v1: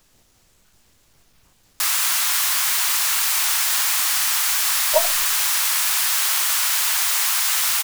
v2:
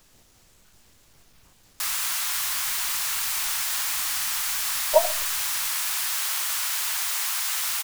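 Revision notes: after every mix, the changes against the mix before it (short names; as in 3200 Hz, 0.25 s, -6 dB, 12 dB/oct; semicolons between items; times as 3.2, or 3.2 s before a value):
speech: send +7.5 dB; background -7.0 dB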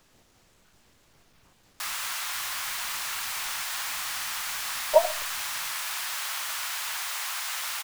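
speech: add low shelf 100 Hz -7 dB; master: add high shelf 4600 Hz -9 dB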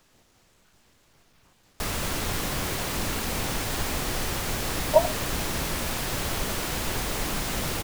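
background: remove HPF 980 Hz 24 dB/oct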